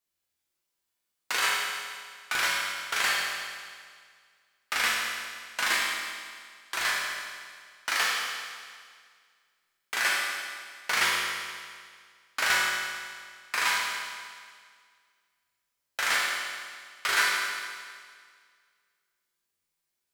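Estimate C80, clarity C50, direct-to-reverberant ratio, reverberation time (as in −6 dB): 1.0 dB, −1.0 dB, −5.0 dB, 1.9 s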